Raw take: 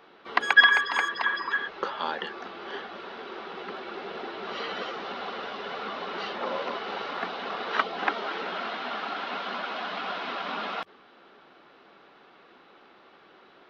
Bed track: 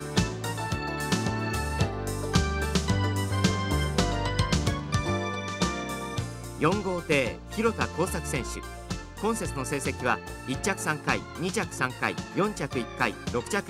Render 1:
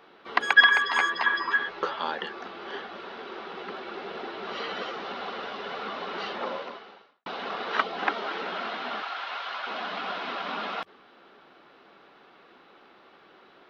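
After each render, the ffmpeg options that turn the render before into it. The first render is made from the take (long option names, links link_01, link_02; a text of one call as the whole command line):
ffmpeg -i in.wav -filter_complex "[0:a]asettb=1/sr,asplit=3[link_01][link_02][link_03];[link_01]atrim=end=0.804[link_04];[link_02]atrim=start=0.8:end=1.99,asetpts=PTS-STARTPTS,afade=type=in:duration=0.004:curve=qsin,afade=type=out:start_time=1.186:duration=0.004:curve=qsin,asplit=2[link_05][link_06];[link_06]adelay=12,volume=-3dB[link_07];[link_05][link_07]amix=inputs=2:normalize=0,atrim=end_sample=52479[link_08];[link_03]atrim=start=1.986[link_09];[link_04][link_08]acrossfade=duration=0.004:curve1=hsin:curve2=qsin[link_10];[link_10][link_09]acrossfade=duration=0.004:curve1=qsin:curve2=hsin,asettb=1/sr,asplit=3[link_11][link_12][link_13];[link_11]atrim=end=9.024[link_14];[link_12]atrim=start=9.02:end=9.67,asetpts=PTS-STARTPTS,afade=type=in:duration=0.004:curve=qsin,afade=type=out:start_time=0.646:duration=0.004:curve=qsin,highpass=770[link_15];[link_13]atrim=start=9.666[link_16];[link_14][link_15]acrossfade=duration=0.004:curve1=hsin:curve2=qsin[link_17];[link_17][link_16]acrossfade=duration=0.004:curve1=qsin:curve2=hsin,asplit=2[link_18][link_19];[link_18]atrim=end=7.26,asetpts=PTS-STARTPTS,afade=type=out:start_time=6.42:duration=0.84:curve=qua[link_20];[link_19]atrim=start=7.26,asetpts=PTS-STARTPTS,afade=type=in:duration=0.004:curve=hsin[link_21];[link_20][link_21]concat=n=2:v=0:a=1" out.wav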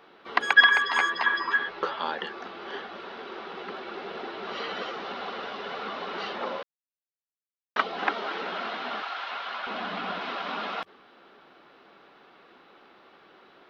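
ffmpeg -i in.wav -filter_complex "[0:a]asettb=1/sr,asplit=3[link_01][link_02][link_03];[link_01]atrim=end=1.594[link_04];[link_02]atrim=start=1.59:end=2.18,asetpts=PTS-STARTPTS,afade=type=in:duration=0.004:curve=qsin,afade=type=out:start_time=0.586:duration=0.004:curve=qsin,equalizer=frequency=7000:width=3.4:gain=-6[link_05];[link_03]atrim=start=2.176[link_06];[link_04][link_05]acrossfade=duration=0.004:curve1=hsin:curve2=qsin[link_07];[link_07][link_06]acrossfade=duration=0.004:curve1=qsin:curve2=hsin,asettb=1/sr,asplit=3[link_08][link_09][link_10];[link_08]atrim=end=9.324[link_11];[link_09]atrim=start=9.32:end=10.21,asetpts=PTS-STARTPTS,afade=type=in:duration=0.004:curve=qsin,afade=type=out:start_time=0.886:duration=0.004:curve=qsin,bass=frequency=250:gain=10,treble=frequency=4000:gain=-3[link_12];[link_10]atrim=start=10.206[link_13];[link_11][link_12]acrossfade=duration=0.004:curve1=hsin:curve2=qsin[link_14];[link_14][link_13]acrossfade=duration=0.004:curve1=qsin:curve2=hsin,asplit=3[link_15][link_16][link_17];[link_15]atrim=end=6.63,asetpts=PTS-STARTPTS,afade=type=out:start_time=6.626:duration=0.004:curve=hsin[link_18];[link_16]atrim=start=6.63:end=7.76,asetpts=PTS-STARTPTS,volume=0[link_19];[link_17]atrim=start=7.76,asetpts=PTS-STARTPTS,afade=type=in:duration=0.004:curve=hsin[link_20];[link_18][link_19][link_20]concat=n=3:v=0:a=1" out.wav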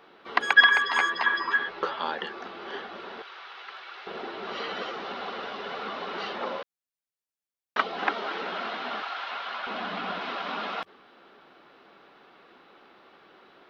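ffmpeg -i in.wav -filter_complex "[0:a]asettb=1/sr,asplit=3[link_01][link_02][link_03];[link_01]atrim=end=3.224[link_04];[link_02]atrim=start=3.22:end=4.07,asetpts=PTS-STARTPTS,afade=type=in:duration=0.004:curve=qsin,afade=type=out:start_time=0.846:duration=0.004:curve=qsin,highpass=1200[link_05];[link_03]atrim=start=4.066[link_06];[link_04][link_05]acrossfade=duration=0.004:curve1=hsin:curve2=qsin[link_07];[link_07][link_06]acrossfade=duration=0.004:curve1=qsin:curve2=hsin" out.wav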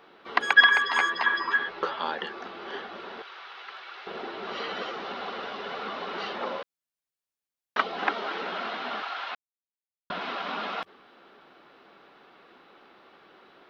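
ffmpeg -i in.wav -filter_complex "[0:a]asplit=3[link_01][link_02][link_03];[link_01]atrim=end=9.35,asetpts=PTS-STARTPTS,afade=type=out:start_time=9.346:duration=0.004:curve=hsin[link_04];[link_02]atrim=start=9.35:end=10.1,asetpts=PTS-STARTPTS,volume=0[link_05];[link_03]atrim=start=10.1,asetpts=PTS-STARTPTS,afade=type=in:duration=0.004:curve=hsin[link_06];[link_04][link_05][link_06]concat=n=3:v=0:a=1" out.wav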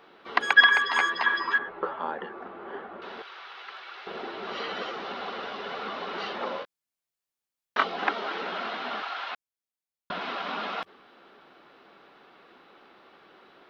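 ffmpeg -i in.wav -filter_complex "[0:a]asettb=1/sr,asplit=3[link_01][link_02][link_03];[link_01]atrim=end=1.584[link_04];[link_02]atrim=start=1.58:end=3.02,asetpts=PTS-STARTPTS,afade=type=in:duration=0.004:curve=qsin,afade=type=out:start_time=1.436:duration=0.004:curve=qsin,lowpass=1400[link_05];[link_03]atrim=start=3.016[link_06];[link_04][link_05]acrossfade=duration=0.004:curve1=hsin:curve2=qsin[link_07];[link_07][link_06]acrossfade=duration=0.004:curve1=qsin:curve2=hsin,asettb=1/sr,asplit=3[link_08][link_09][link_10];[link_08]atrim=end=6.604[link_11];[link_09]atrim=start=6.6:end=7.96,asetpts=PTS-STARTPTS,afade=type=in:duration=0.004:curve=qsin,afade=type=out:start_time=1.356:duration=0.004:curve=qsin,asplit=2[link_12][link_13];[link_13]adelay=22,volume=-5dB[link_14];[link_12][link_14]amix=inputs=2:normalize=0,atrim=end_sample=59976[link_15];[link_10]atrim=start=7.956[link_16];[link_11][link_15]acrossfade=duration=0.004:curve1=hsin:curve2=qsin[link_17];[link_17][link_16]acrossfade=duration=0.004:curve1=qsin:curve2=hsin" out.wav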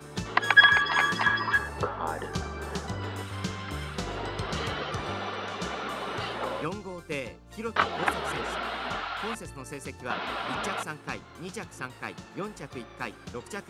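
ffmpeg -i in.wav -i bed.wav -filter_complex "[1:a]volume=-9.5dB[link_01];[0:a][link_01]amix=inputs=2:normalize=0" out.wav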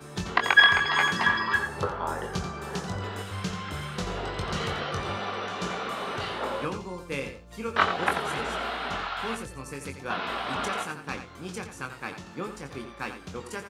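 ffmpeg -i in.wav -filter_complex "[0:a]asplit=2[link_01][link_02];[link_02]adelay=22,volume=-6.5dB[link_03];[link_01][link_03]amix=inputs=2:normalize=0,asplit=2[link_04][link_05];[link_05]adelay=87.46,volume=-9dB,highshelf=frequency=4000:gain=-1.97[link_06];[link_04][link_06]amix=inputs=2:normalize=0" out.wav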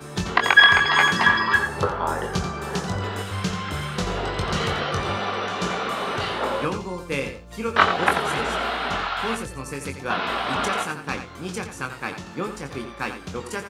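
ffmpeg -i in.wav -af "volume=6dB,alimiter=limit=-2dB:level=0:latency=1" out.wav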